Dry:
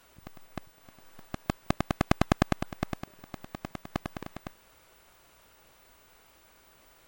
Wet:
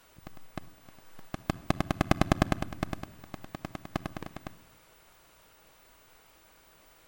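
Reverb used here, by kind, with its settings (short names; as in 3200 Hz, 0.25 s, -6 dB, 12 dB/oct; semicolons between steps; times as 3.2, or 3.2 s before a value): shoebox room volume 3000 m³, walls furnished, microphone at 0.54 m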